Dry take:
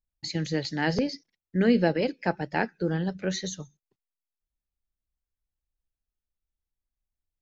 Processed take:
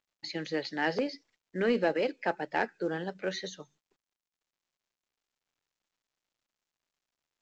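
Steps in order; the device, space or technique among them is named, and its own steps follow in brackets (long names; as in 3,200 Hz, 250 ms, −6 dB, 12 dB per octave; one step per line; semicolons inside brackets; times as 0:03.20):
telephone (band-pass filter 360–3,600 Hz; soft clipping −17 dBFS, distortion −19 dB; mu-law 128 kbit/s 16,000 Hz)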